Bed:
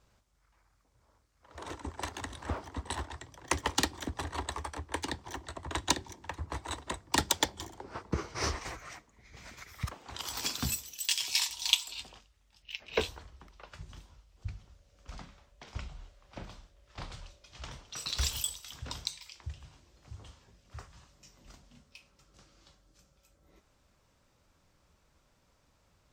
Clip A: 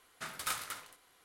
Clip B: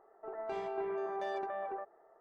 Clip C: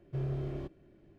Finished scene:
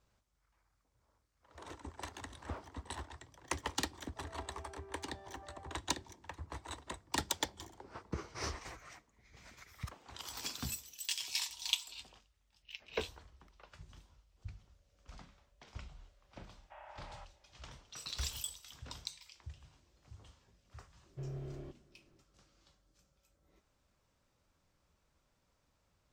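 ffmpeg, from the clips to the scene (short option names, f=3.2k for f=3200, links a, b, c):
-filter_complex "[3:a]asplit=2[a][b];[0:a]volume=-7.5dB[c];[2:a]acompressor=threshold=-41dB:ratio=6:attack=3.2:release=140:knee=1:detection=peak[d];[a]highpass=f=590:t=q:w=0.5412,highpass=f=590:t=q:w=1.307,lowpass=f=2.8k:t=q:w=0.5176,lowpass=f=2.8k:t=q:w=0.7071,lowpass=f=2.8k:t=q:w=1.932,afreqshift=220[e];[d]atrim=end=2.2,asetpts=PTS-STARTPTS,volume=-10.5dB,afade=t=in:d=0.004:c=hsin,afade=t=out:st=2.196:d=0.004:c=hsin,adelay=173313S[f];[e]atrim=end=1.18,asetpts=PTS-STARTPTS,volume=-1dB,afade=t=in:d=0.004:c=hsin,afade=t=out:st=1.176:d=0.004:c=hsin,adelay=16570[g];[b]atrim=end=1.18,asetpts=PTS-STARTPTS,volume=-8.5dB,afade=t=in:d=0.004:c=hsin,afade=t=out:st=1.176:d=0.004:c=hsin,adelay=21040[h];[c][f][g][h]amix=inputs=4:normalize=0"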